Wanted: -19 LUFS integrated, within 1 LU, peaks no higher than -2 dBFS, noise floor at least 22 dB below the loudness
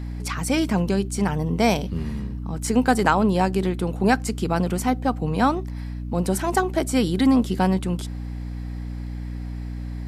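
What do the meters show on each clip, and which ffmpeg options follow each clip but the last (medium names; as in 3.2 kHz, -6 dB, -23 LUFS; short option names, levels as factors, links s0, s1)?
hum 60 Hz; highest harmonic 300 Hz; hum level -28 dBFS; loudness -23.5 LUFS; peak level -4.5 dBFS; loudness target -19.0 LUFS
-> -af "bandreject=f=60:t=h:w=6,bandreject=f=120:t=h:w=6,bandreject=f=180:t=h:w=6,bandreject=f=240:t=h:w=6,bandreject=f=300:t=h:w=6"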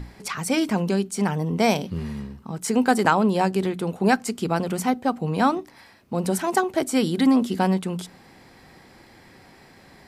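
hum not found; loudness -23.0 LUFS; peak level -5.0 dBFS; loudness target -19.0 LUFS
-> -af "volume=1.58,alimiter=limit=0.794:level=0:latency=1"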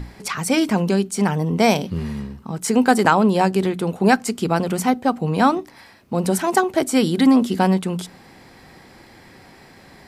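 loudness -19.5 LUFS; peak level -2.0 dBFS; noise floor -47 dBFS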